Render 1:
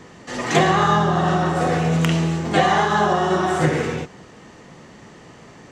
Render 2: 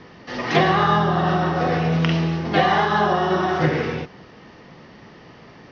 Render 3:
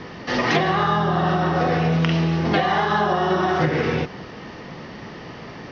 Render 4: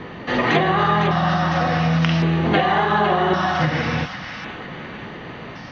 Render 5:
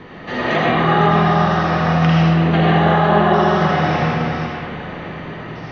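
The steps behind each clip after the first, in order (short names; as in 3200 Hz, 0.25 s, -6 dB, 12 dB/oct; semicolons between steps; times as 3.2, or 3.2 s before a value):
elliptic low-pass 5400 Hz, stop band 40 dB
compressor, threshold -25 dBFS, peak gain reduction 12.5 dB; gain +8 dB
thin delay 0.505 s, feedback 53%, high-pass 1600 Hz, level -6 dB; LFO notch square 0.45 Hz 400–5300 Hz; gain +2 dB
digital reverb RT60 3.3 s, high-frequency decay 0.3×, pre-delay 40 ms, DRR -5.5 dB; gain -4 dB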